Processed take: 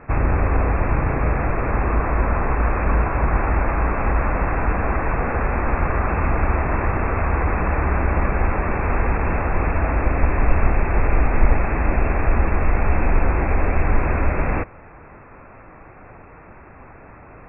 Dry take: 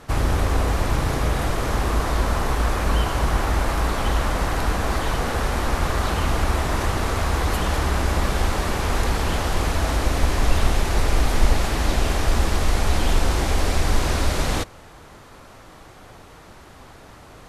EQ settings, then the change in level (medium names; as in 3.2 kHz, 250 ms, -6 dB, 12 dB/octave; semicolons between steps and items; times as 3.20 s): brick-wall FIR low-pass 2.7 kHz; +2.0 dB